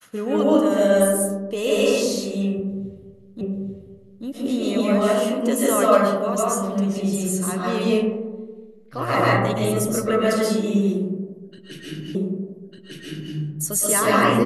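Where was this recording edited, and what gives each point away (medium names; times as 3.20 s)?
3.41 s: repeat of the last 0.84 s
12.15 s: repeat of the last 1.2 s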